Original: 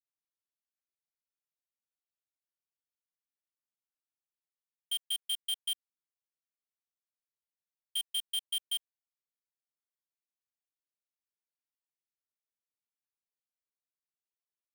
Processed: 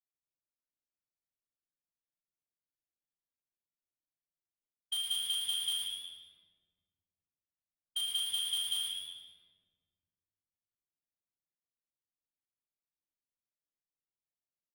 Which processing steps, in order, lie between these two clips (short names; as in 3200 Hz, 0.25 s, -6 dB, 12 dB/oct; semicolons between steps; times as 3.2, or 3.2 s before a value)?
low-pass opened by the level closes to 560 Hz, open at -33.5 dBFS; level quantiser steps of 17 dB; doubler 39 ms -6.5 dB; frequency-shifting echo 0.11 s, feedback 44%, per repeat +87 Hz, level -6 dB; shoebox room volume 1500 m³, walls mixed, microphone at 2.7 m